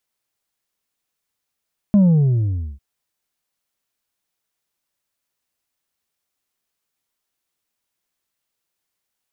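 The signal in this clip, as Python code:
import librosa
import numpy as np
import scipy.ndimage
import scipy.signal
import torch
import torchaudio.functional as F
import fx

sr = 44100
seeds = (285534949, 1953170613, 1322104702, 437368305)

y = fx.sub_drop(sr, level_db=-9.5, start_hz=210.0, length_s=0.85, drive_db=3.5, fade_s=0.84, end_hz=65.0)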